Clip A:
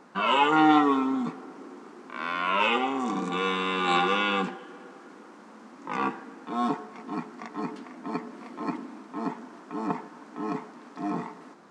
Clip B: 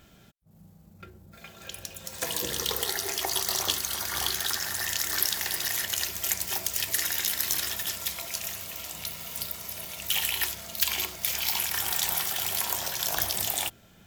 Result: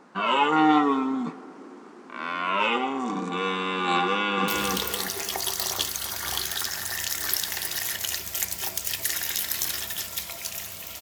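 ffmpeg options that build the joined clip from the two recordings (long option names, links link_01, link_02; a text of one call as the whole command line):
ffmpeg -i cue0.wav -i cue1.wav -filter_complex "[0:a]apad=whole_dur=11.01,atrim=end=11.01,atrim=end=4.482[link_01];[1:a]atrim=start=2.368:end=8.9[link_02];[link_01][link_02]acrossfade=duration=0.004:curve1=hsin:curve2=hsin,asplit=2[link_03][link_04];[link_04]afade=type=in:start_time=4.06:duration=0.01,afade=type=out:start_time=4.48:duration=0.01,aecho=0:1:310|620|930|1240|1550:0.794328|0.278015|0.0973052|0.0340568|0.0119199[link_05];[link_03][link_05]amix=inputs=2:normalize=0" out.wav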